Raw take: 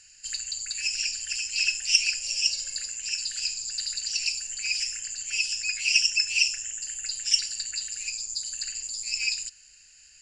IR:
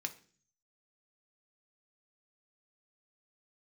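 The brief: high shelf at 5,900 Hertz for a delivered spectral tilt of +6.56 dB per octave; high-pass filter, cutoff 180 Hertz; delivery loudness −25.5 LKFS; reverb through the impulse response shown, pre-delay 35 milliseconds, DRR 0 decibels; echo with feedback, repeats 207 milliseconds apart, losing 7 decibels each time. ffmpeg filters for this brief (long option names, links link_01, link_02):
-filter_complex "[0:a]highpass=180,highshelf=frequency=5900:gain=-8,aecho=1:1:207|414|621|828|1035:0.447|0.201|0.0905|0.0407|0.0183,asplit=2[link_01][link_02];[1:a]atrim=start_sample=2205,adelay=35[link_03];[link_02][link_03]afir=irnorm=-1:irlink=0,volume=0dB[link_04];[link_01][link_04]amix=inputs=2:normalize=0,volume=-0.5dB"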